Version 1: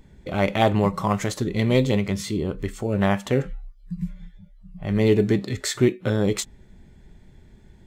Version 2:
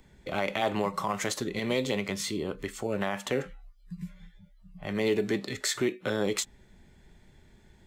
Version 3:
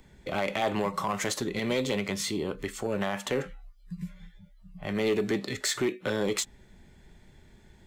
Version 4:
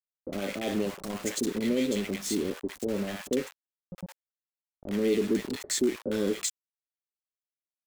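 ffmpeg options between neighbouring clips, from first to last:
ffmpeg -i in.wav -filter_complex "[0:a]lowshelf=frequency=470:gain=-8.5,acrossover=split=170|740|2500[link_01][link_02][link_03][link_04];[link_01]acompressor=threshold=-44dB:ratio=6[link_05];[link_05][link_02][link_03][link_04]amix=inputs=4:normalize=0,alimiter=limit=-17.5dB:level=0:latency=1:release=60" out.wav
ffmpeg -i in.wav -af "asoftclip=type=tanh:threshold=-21dB,volume=2dB" out.wav
ffmpeg -i in.wav -filter_complex "[0:a]equalizer=frequency=125:width_type=o:width=1:gain=-8,equalizer=frequency=250:width_type=o:width=1:gain=11,equalizer=frequency=500:width_type=o:width=1:gain=5,equalizer=frequency=1000:width_type=o:width=1:gain=-11,equalizer=frequency=8000:width_type=o:width=1:gain=6,aeval=exprs='val(0)*gte(abs(val(0)),0.0282)':channel_layout=same,acrossover=split=740[link_01][link_02];[link_02]adelay=60[link_03];[link_01][link_03]amix=inputs=2:normalize=0,volume=-4dB" out.wav

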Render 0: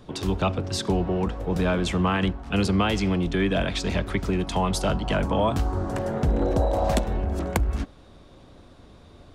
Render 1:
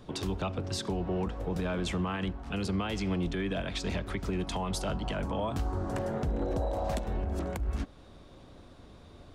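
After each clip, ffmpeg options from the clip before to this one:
ffmpeg -i in.wav -filter_complex "[0:a]asplit=2[link_01][link_02];[link_02]acompressor=threshold=-31dB:ratio=6,volume=-2.5dB[link_03];[link_01][link_03]amix=inputs=2:normalize=0,alimiter=limit=-15.5dB:level=0:latency=1:release=122,volume=-7.5dB" out.wav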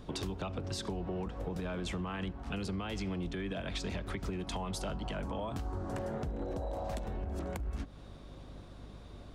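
ffmpeg -i in.wav -af "acompressor=threshold=-34dB:ratio=6,aeval=exprs='val(0)+0.00316*(sin(2*PI*50*n/s)+sin(2*PI*2*50*n/s)/2+sin(2*PI*3*50*n/s)/3+sin(2*PI*4*50*n/s)/4+sin(2*PI*5*50*n/s)/5)':channel_layout=same" out.wav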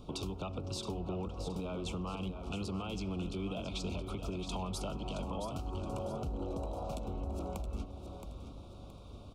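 ffmpeg -i in.wav -filter_complex "[0:a]asuperstop=centerf=1800:order=8:qfactor=1.9,asplit=2[link_01][link_02];[link_02]aecho=0:1:671|1342|2013|2684:0.376|0.135|0.0487|0.0175[link_03];[link_01][link_03]amix=inputs=2:normalize=0,volume=-1.5dB" out.wav

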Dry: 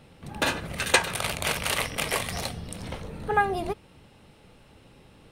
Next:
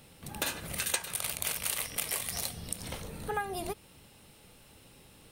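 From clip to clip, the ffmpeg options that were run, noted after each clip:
ffmpeg -i in.wav -af "aemphasis=mode=production:type=75fm,acompressor=threshold=-28dB:ratio=3,volume=-4dB" out.wav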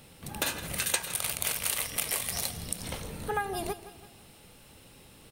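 ffmpeg -i in.wav -af "aecho=1:1:165|330|495|660:0.178|0.0854|0.041|0.0197,volume=2.5dB" out.wav

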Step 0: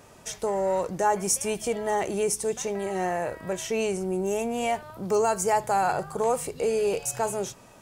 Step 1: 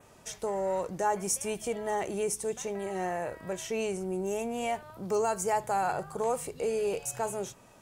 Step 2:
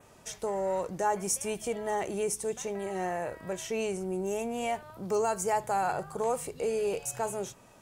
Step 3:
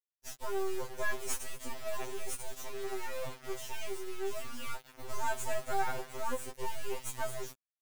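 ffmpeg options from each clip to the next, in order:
ffmpeg -i in.wav -af "adynamicequalizer=threshold=0.00251:dfrequency=4900:dqfactor=2.7:tfrequency=4900:tqfactor=2.7:attack=5:release=100:ratio=0.375:range=2:mode=cutabove:tftype=bell,volume=-5dB" out.wav
ffmpeg -i in.wav -af anull out.wav
ffmpeg -i in.wav -af "acrusher=bits=4:dc=4:mix=0:aa=0.000001,afftfilt=real='re*2.45*eq(mod(b,6),0)':imag='im*2.45*eq(mod(b,6),0)':win_size=2048:overlap=0.75" out.wav

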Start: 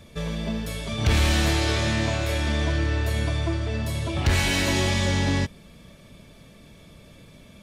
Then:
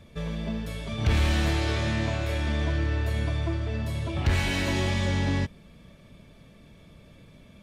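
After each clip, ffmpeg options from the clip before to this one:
ffmpeg -i in.wav -af "bass=frequency=250:gain=2,treble=frequency=4000:gain=-6,volume=-4dB" out.wav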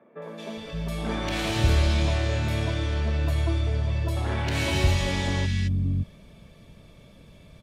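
ffmpeg -i in.wav -filter_complex "[0:a]acrossover=split=250|1700[link_01][link_02][link_03];[link_03]adelay=220[link_04];[link_01]adelay=570[link_05];[link_05][link_02][link_04]amix=inputs=3:normalize=0,volume=2.5dB" out.wav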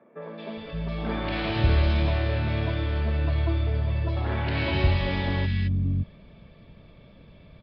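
ffmpeg -i in.wav -af "aresample=11025,aresample=44100,bass=frequency=250:gain=0,treble=frequency=4000:gain=-9" out.wav

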